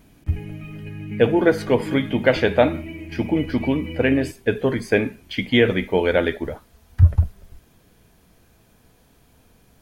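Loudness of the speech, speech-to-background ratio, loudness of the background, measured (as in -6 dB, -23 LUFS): -21.0 LUFS, 12.5 dB, -33.5 LUFS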